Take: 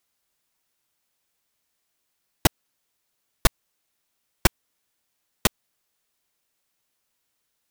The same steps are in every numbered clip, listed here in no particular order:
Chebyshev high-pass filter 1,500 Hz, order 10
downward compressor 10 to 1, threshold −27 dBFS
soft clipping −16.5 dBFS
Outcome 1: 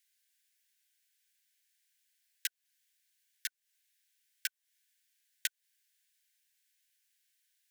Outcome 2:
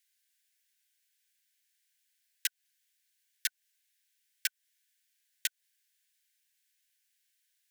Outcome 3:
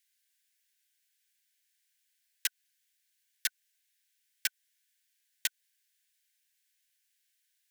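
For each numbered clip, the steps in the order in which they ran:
downward compressor, then Chebyshev high-pass filter, then soft clipping
Chebyshev high-pass filter, then downward compressor, then soft clipping
Chebyshev high-pass filter, then soft clipping, then downward compressor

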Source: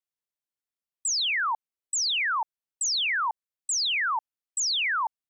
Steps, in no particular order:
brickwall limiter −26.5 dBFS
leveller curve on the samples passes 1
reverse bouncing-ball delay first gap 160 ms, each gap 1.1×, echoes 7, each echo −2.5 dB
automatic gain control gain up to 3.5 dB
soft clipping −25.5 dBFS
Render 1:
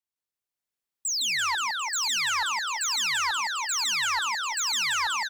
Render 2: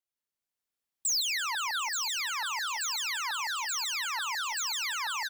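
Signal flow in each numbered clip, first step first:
automatic gain control, then brickwall limiter, then soft clipping, then reverse bouncing-ball delay, then leveller curve on the samples
automatic gain control, then soft clipping, then leveller curve on the samples, then reverse bouncing-ball delay, then brickwall limiter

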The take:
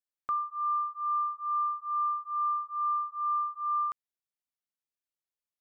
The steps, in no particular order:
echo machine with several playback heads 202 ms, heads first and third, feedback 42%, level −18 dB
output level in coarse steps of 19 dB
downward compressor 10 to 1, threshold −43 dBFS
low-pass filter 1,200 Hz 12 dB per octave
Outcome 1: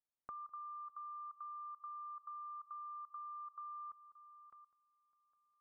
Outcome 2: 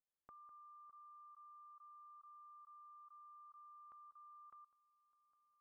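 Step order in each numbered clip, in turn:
echo machine with several playback heads, then output level in coarse steps, then downward compressor, then low-pass filter
echo machine with several playback heads, then downward compressor, then output level in coarse steps, then low-pass filter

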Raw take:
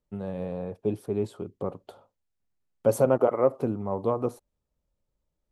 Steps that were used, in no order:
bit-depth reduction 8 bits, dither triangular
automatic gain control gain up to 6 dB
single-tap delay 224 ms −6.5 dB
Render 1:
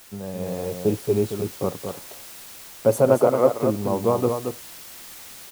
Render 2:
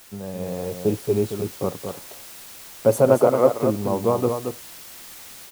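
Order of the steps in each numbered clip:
bit-depth reduction, then single-tap delay, then automatic gain control
bit-depth reduction, then automatic gain control, then single-tap delay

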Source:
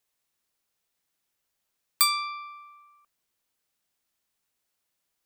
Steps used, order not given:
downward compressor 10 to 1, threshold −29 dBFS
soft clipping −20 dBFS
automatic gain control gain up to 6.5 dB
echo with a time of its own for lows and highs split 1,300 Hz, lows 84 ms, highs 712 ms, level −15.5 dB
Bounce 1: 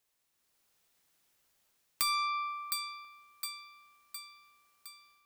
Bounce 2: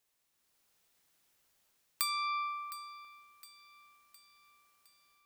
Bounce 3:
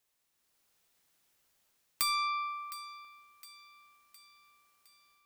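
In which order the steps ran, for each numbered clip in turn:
automatic gain control, then echo with a time of its own for lows and highs, then soft clipping, then downward compressor
automatic gain control, then downward compressor, then soft clipping, then echo with a time of its own for lows and highs
automatic gain control, then soft clipping, then downward compressor, then echo with a time of its own for lows and highs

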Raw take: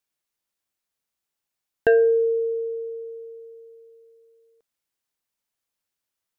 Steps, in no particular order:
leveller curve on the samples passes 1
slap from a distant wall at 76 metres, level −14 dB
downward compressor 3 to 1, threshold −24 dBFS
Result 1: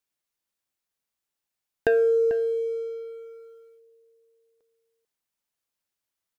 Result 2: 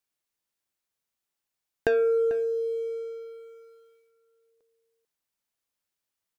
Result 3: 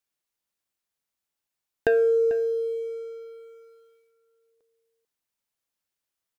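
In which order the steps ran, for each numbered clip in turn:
downward compressor, then slap from a distant wall, then leveller curve on the samples
leveller curve on the samples, then downward compressor, then slap from a distant wall
downward compressor, then leveller curve on the samples, then slap from a distant wall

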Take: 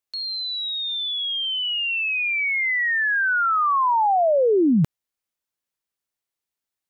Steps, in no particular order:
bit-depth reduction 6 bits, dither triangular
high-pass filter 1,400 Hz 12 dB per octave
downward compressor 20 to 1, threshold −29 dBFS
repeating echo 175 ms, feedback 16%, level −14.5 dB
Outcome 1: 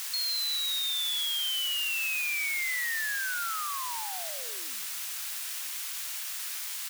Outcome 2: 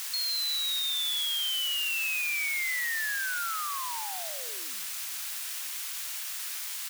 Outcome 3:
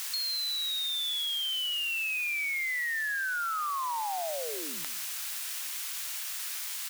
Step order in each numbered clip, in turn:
repeating echo, then downward compressor, then bit-depth reduction, then high-pass filter
downward compressor, then repeating echo, then bit-depth reduction, then high-pass filter
repeating echo, then bit-depth reduction, then high-pass filter, then downward compressor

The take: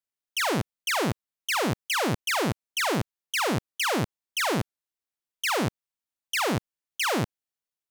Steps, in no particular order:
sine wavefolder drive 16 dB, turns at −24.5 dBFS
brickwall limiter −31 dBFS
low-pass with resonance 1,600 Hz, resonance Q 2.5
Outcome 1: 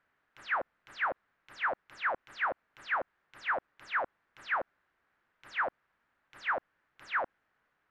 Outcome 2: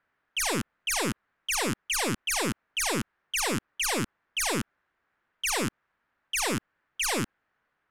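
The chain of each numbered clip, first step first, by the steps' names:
sine wavefolder, then brickwall limiter, then low-pass with resonance
brickwall limiter, then low-pass with resonance, then sine wavefolder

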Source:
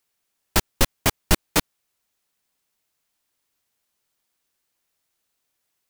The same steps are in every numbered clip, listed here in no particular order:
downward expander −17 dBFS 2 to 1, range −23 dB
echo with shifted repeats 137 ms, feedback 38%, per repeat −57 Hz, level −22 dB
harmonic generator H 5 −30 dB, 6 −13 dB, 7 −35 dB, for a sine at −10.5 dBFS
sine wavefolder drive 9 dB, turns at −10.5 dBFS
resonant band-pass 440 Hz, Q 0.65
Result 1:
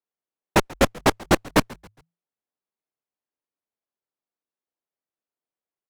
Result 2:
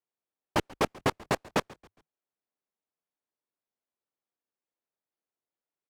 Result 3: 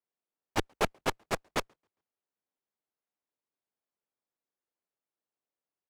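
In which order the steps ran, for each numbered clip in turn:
resonant band-pass, then sine wavefolder, then downward expander, then harmonic generator, then echo with shifted repeats
downward expander, then sine wavefolder, then harmonic generator, then resonant band-pass, then echo with shifted repeats
sine wavefolder, then echo with shifted repeats, then resonant band-pass, then harmonic generator, then downward expander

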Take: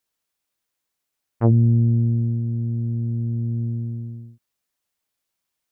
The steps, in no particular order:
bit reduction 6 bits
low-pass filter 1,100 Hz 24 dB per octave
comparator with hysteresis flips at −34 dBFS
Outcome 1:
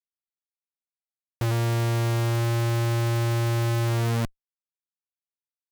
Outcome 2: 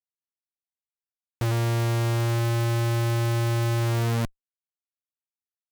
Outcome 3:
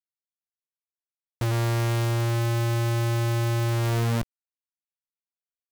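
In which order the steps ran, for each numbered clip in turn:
low-pass filter, then bit reduction, then comparator with hysteresis
bit reduction, then low-pass filter, then comparator with hysteresis
low-pass filter, then comparator with hysteresis, then bit reduction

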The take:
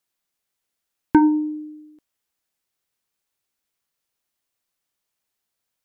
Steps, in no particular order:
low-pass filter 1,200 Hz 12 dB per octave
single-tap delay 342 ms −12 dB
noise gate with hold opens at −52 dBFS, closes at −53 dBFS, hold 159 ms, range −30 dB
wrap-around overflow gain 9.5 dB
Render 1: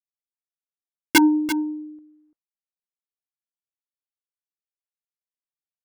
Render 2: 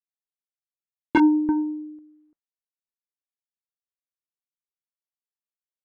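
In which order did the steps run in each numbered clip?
low-pass filter, then wrap-around overflow, then single-tap delay, then noise gate with hold
single-tap delay, then wrap-around overflow, then noise gate with hold, then low-pass filter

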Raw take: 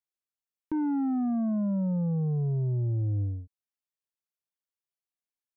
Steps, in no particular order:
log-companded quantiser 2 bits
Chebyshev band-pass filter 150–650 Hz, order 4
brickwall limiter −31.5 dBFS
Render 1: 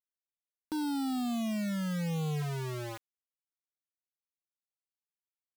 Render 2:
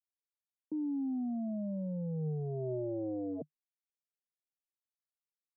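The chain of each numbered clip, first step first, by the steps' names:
Chebyshev band-pass filter, then log-companded quantiser, then brickwall limiter
log-companded quantiser, then Chebyshev band-pass filter, then brickwall limiter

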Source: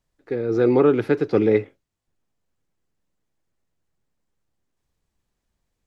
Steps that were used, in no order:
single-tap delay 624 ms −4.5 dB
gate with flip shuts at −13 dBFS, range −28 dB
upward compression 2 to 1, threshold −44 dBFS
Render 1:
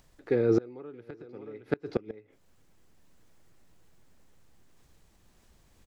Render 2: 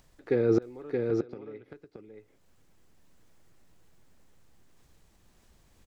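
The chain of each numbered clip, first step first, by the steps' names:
upward compression, then single-tap delay, then gate with flip
upward compression, then gate with flip, then single-tap delay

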